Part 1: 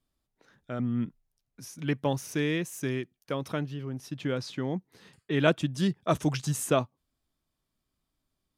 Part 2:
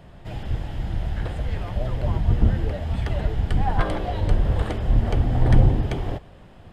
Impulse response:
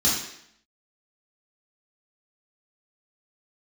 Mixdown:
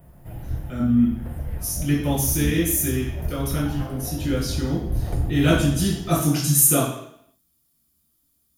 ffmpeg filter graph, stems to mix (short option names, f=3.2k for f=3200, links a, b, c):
-filter_complex "[0:a]equalizer=f=7.6k:w=0.98:g=9,volume=-4dB,asplit=3[a][b][c];[b]volume=-6.5dB[d];[1:a]equalizer=f=3.8k:w=0.74:g=-13,volume=-4.5dB,asplit=2[e][f];[f]volume=-20.5dB[g];[c]apad=whole_len=296773[h];[e][h]sidechaincompress=threshold=-44dB:ratio=8:attack=16:release=286[i];[2:a]atrim=start_sample=2205[j];[d][g]amix=inputs=2:normalize=0[k];[k][j]afir=irnorm=-1:irlink=0[l];[a][i][l]amix=inputs=3:normalize=0,aexciter=amount=9.3:drive=6.4:freq=9.9k"